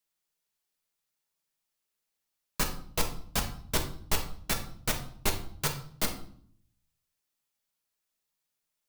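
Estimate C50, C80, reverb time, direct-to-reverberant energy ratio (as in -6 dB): 9.0 dB, 13.5 dB, 0.55 s, 2.0 dB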